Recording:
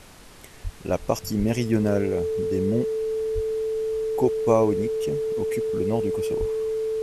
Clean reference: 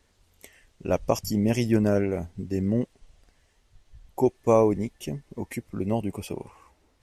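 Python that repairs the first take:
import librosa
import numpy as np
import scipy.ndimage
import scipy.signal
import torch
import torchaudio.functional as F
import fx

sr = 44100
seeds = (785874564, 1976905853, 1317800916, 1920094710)

y = fx.notch(x, sr, hz=440.0, q=30.0)
y = fx.fix_deplosive(y, sr, at_s=(0.63, 1.38, 3.34, 6.39))
y = fx.noise_reduce(y, sr, print_start_s=0.03, print_end_s=0.53, reduce_db=20.0)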